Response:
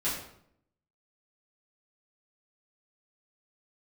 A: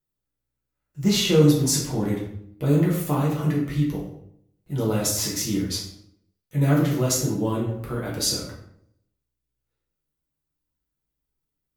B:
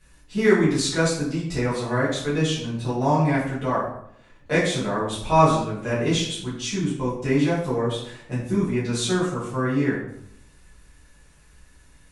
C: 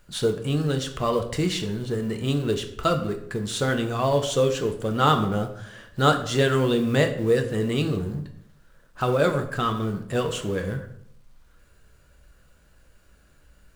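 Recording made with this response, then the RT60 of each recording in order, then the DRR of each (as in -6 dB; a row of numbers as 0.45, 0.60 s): B; 0.70, 0.70, 0.70 s; -4.0, -11.0, 5.5 dB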